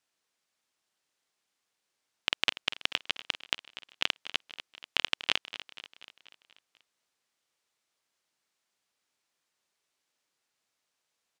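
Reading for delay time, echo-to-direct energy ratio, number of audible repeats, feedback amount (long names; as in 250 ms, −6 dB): 242 ms, −13.0 dB, 5, 56%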